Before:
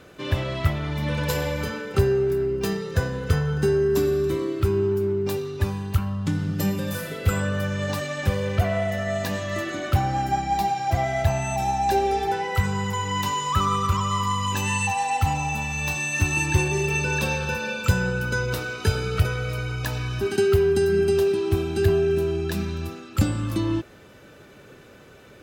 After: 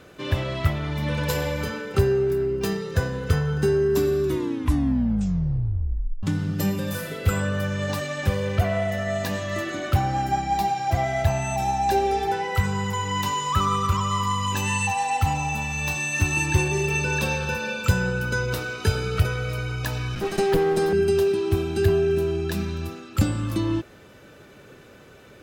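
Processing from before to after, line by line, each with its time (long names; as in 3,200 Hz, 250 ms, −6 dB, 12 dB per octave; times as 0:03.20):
0:04.23: tape stop 2.00 s
0:20.15–0:20.93: lower of the sound and its delayed copy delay 5.6 ms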